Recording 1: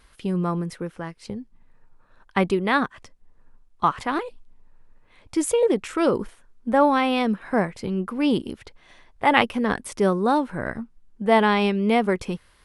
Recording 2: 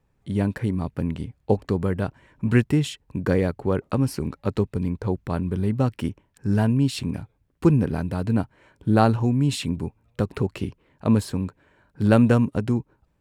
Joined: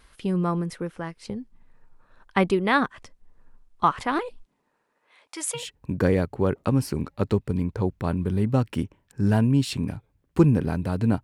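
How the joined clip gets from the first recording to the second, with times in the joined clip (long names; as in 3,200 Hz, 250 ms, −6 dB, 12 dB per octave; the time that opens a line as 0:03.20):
recording 1
0:04.44–0:05.66: high-pass filter 160 Hz → 1,300 Hz
0:05.60: continue with recording 2 from 0:02.86, crossfade 0.12 s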